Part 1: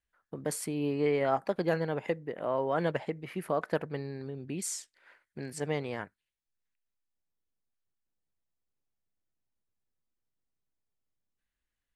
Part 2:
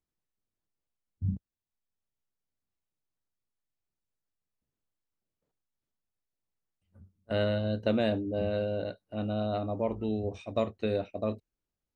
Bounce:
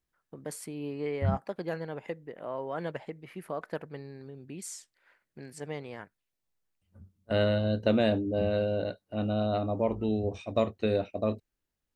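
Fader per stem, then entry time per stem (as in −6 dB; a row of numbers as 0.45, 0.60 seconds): −5.5, +2.5 decibels; 0.00, 0.00 seconds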